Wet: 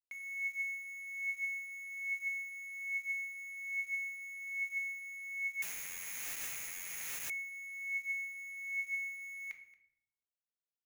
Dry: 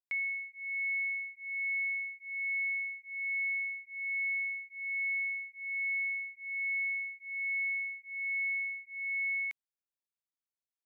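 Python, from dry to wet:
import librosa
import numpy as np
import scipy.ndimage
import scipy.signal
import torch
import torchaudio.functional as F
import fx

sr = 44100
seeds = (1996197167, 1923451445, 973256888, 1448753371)

y = fx.dynamic_eq(x, sr, hz=2000.0, q=3.7, threshold_db=-50.0, ratio=4.0, max_db=7)
y = fx.over_compress(y, sr, threshold_db=-40.0, ratio=-1.0)
y = np.sign(y) * np.maximum(np.abs(y) - 10.0 ** (-58.0 / 20.0), 0.0)
y = fx.quant_dither(y, sr, seeds[0], bits=10, dither='none')
y = y + 10.0 ** (-19.0 / 20.0) * np.pad(y, (int(227 * sr / 1000.0), 0))[:len(y)]
y = fx.room_shoebox(y, sr, seeds[1], volume_m3=170.0, walls='mixed', distance_m=0.49)
y = fx.spectral_comp(y, sr, ratio=10.0, at=(5.62, 7.3))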